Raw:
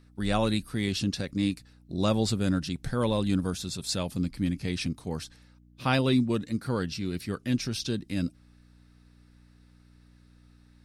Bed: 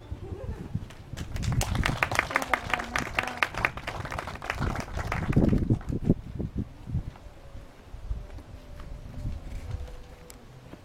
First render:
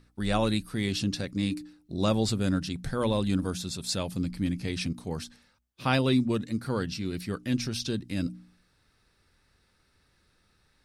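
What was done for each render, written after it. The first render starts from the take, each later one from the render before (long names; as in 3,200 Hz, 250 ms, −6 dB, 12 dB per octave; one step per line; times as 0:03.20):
hum removal 60 Hz, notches 5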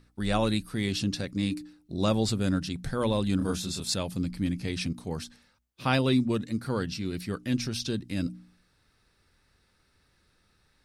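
0:03.38–0:03.94: double-tracking delay 26 ms −2 dB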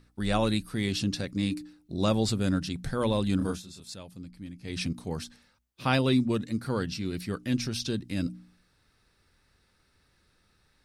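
0:03.46–0:04.79: duck −13 dB, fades 0.17 s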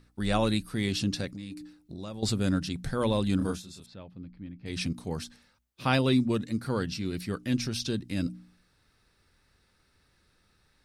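0:01.34–0:02.23: downward compressor 4 to 1, threshold −38 dBFS
0:03.86–0:04.66: high-frequency loss of the air 340 metres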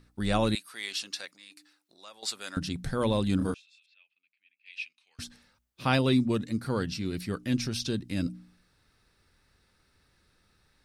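0:00.55–0:02.57: high-pass filter 990 Hz
0:03.54–0:05.19: four-pole ladder band-pass 2,700 Hz, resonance 80%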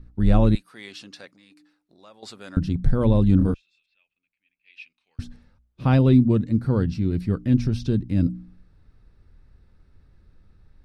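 spectral tilt −4 dB per octave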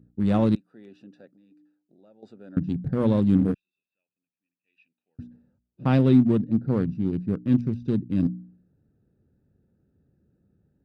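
adaptive Wiener filter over 41 samples
Chebyshev high-pass filter 170 Hz, order 2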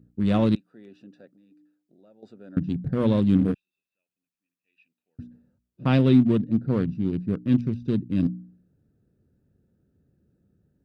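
notch filter 820 Hz, Q 12
dynamic equaliser 3,100 Hz, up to +6 dB, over −50 dBFS, Q 1.1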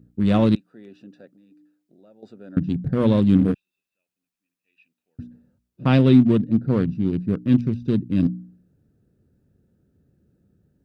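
level +3.5 dB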